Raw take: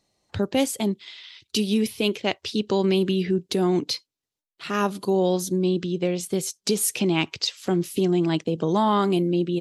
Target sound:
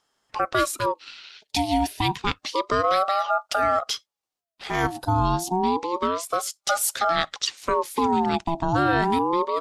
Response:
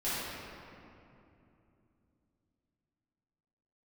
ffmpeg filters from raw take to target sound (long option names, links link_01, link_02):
-af "aeval=exprs='val(0)*sin(2*PI*760*n/s+760*0.35/0.29*sin(2*PI*0.29*n/s))':channel_layout=same,volume=2.5dB"